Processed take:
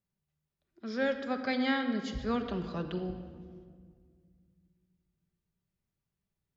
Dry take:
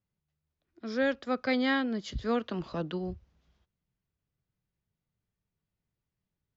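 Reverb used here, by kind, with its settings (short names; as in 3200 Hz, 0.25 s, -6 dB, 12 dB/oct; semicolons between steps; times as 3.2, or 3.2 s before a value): shoebox room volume 3200 m³, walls mixed, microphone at 1.2 m; gain -3 dB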